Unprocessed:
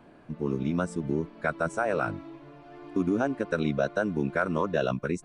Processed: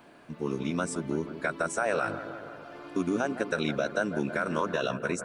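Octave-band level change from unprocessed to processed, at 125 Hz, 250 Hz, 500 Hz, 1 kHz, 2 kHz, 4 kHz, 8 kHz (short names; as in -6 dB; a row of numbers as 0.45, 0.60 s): -5.0, -2.5, -1.5, -0.5, +1.0, +5.0, +8.5 dB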